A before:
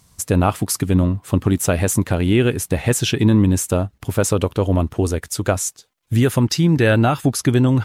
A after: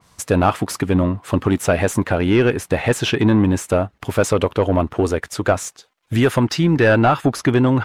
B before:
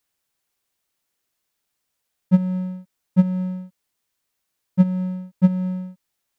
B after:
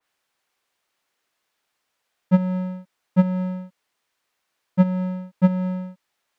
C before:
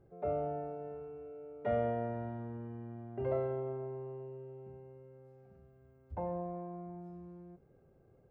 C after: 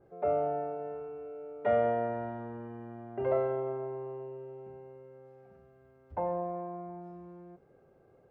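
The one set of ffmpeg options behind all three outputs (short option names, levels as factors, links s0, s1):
-filter_complex "[0:a]asplit=2[s0][s1];[s1]highpass=f=720:p=1,volume=5.62,asoftclip=type=tanh:threshold=0.668[s2];[s0][s2]amix=inputs=2:normalize=0,lowpass=f=2000:p=1,volume=0.501,adynamicequalizer=threshold=0.0178:dfrequency=2800:dqfactor=0.7:tfrequency=2800:tqfactor=0.7:attack=5:release=100:ratio=0.375:range=2.5:mode=cutabove:tftype=highshelf"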